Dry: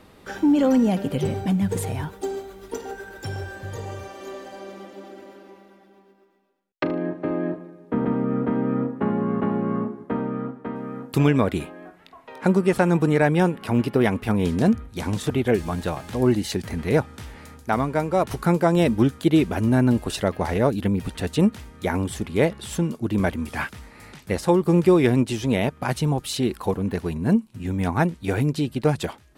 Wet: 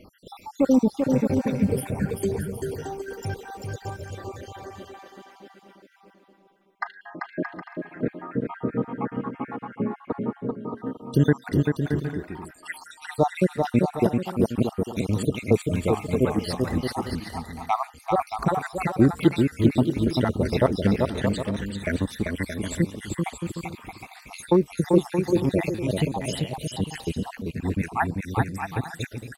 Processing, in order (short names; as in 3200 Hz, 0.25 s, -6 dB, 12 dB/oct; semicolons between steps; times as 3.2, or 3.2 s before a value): random spectral dropouts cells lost 72%; bouncing-ball echo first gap 0.39 s, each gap 0.6×, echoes 5; gain +1.5 dB